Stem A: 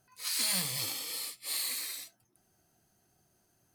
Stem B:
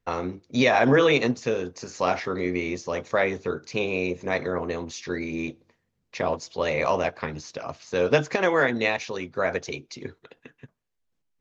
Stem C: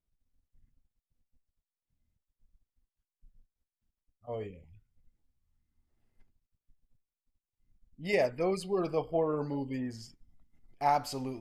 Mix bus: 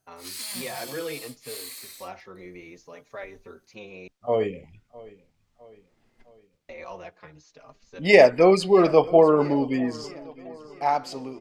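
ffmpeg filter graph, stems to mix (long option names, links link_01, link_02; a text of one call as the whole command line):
ffmpeg -i stem1.wav -i stem2.wav -i stem3.wav -filter_complex "[0:a]volume=-4.5dB[link_01];[1:a]asplit=2[link_02][link_03];[link_03]adelay=4.5,afreqshift=-0.65[link_04];[link_02][link_04]amix=inputs=2:normalize=1,volume=-12.5dB,asplit=3[link_05][link_06][link_07];[link_05]atrim=end=4.08,asetpts=PTS-STARTPTS,afade=type=out:start_time=4.076:duration=0.004:curve=hsin[link_08];[link_06]atrim=start=4.08:end=6.69,asetpts=PTS-STARTPTS,volume=0[link_09];[link_07]atrim=start=6.69,asetpts=PTS-STARTPTS,afade=type=in:duration=0.004:curve=hsin[link_10];[link_08][link_09][link_10]concat=n=3:v=0:a=1[link_11];[2:a]dynaudnorm=framelen=250:gausssize=13:maxgain=13.5dB,acrossover=split=150 7400:gain=0.224 1 0.224[link_12][link_13][link_14];[link_12][link_13][link_14]amix=inputs=3:normalize=0,volume=2.5dB,asplit=3[link_15][link_16][link_17];[link_16]volume=-21dB[link_18];[link_17]apad=whole_len=503300[link_19];[link_11][link_19]sidechaincompress=threshold=-48dB:ratio=8:attack=11:release=180[link_20];[link_18]aecho=0:1:658|1316|1974|2632|3290|3948|4606:1|0.51|0.26|0.133|0.0677|0.0345|0.0176[link_21];[link_01][link_20][link_15][link_21]amix=inputs=4:normalize=0,equalizer=frequency=81:width=0.4:gain=-2.5" out.wav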